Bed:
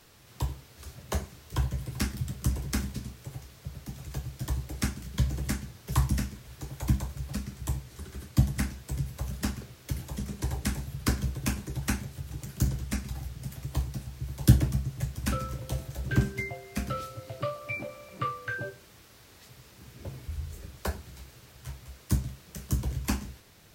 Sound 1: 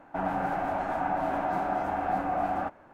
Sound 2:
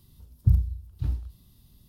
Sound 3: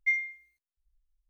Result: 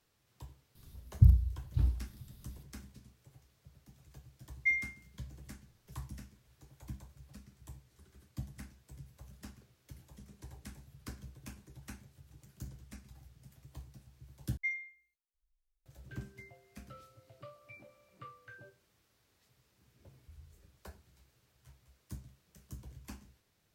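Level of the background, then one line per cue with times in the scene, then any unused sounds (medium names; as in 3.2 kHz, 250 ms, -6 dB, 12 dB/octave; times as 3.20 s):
bed -19 dB
0.75 s: add 2 -1.5 dB
4.59 s: add 3 -3 dB
14.57 s: replace with 3 -9 dB
not used: 1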